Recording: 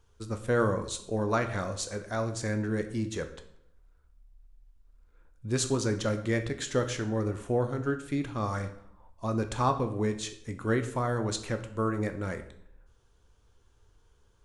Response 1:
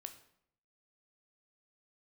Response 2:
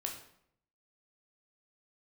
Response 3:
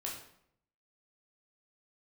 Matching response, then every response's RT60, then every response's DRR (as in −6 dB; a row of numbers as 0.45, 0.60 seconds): 1; 0.70, 0.70, 0.70 seconds; 7.0, 1.0, −3.0 decibels